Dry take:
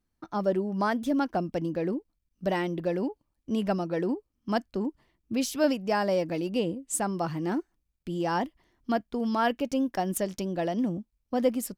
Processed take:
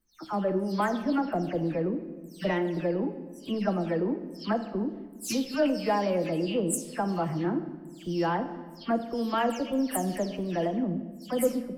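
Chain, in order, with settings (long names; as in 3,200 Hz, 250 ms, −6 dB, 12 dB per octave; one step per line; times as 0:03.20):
every frequency bin delayed by itself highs early, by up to 212 ms
in parallel at −8 dB: soft clipping −23.5 dBFS, distortion −14 dB
on the sum: rectangular room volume 1,300 cubic metres, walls mixed, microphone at 0.65 metres
level −2.5 dB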